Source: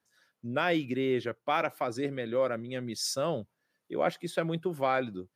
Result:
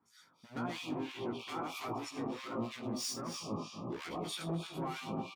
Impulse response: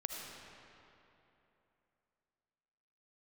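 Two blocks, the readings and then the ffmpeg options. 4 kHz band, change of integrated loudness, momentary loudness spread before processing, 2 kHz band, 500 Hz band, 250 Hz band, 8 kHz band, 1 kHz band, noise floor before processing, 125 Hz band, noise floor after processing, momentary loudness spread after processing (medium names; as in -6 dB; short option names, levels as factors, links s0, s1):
-4.0 dB, -8.5 dB, 7 LU, -11.0 dB, -13.0 dB, -5.0 dB, -4.0 dB, -8.5 dB, -83 dBFS, -5.0 dB, -67 dBFS, 3 LU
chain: -filter_complex "[0:a]highshelf=f=7900:g=-6.5,aecho=1:1:0.9:0.72,acompressor=threshold=0.0251:ratio=6,asoftclip=type=hard:threshold=0.0126,highpass=41,equalizer=f=95:w=0.92:g=-7.5,asplit=2[s0][s1];[s1]asuperstop=centerf=1700:order=20:qfactor=1.6[s2];[1:a]atrim=start_sample=2205,adelay=121[s3];[s2][s3]afir=irnorm=-1:irlink=0,volume=1.12[s4];[s0][s4]amix=inputs=2:normalize=0,alimiter=level_in=3.98:limit=0.0631:level=0:latency=1:release=57,volume=0.251,flanger=delay=17:depth=2.5:speed=1.5,acrossover=split=1400[s5][s6];[s5]aeval=exprs='val(0)*(1-1/2+1/2*cos(2*PI*3.1*n/s))':c=same[s7];[s6]aeval=exprs='val(0)*(1-1/2-1/2*cos(2*PI*3.1*n/s))':c=same[s8];[s7][s8]amix=inputs=2:normalize=0,volume=3.76"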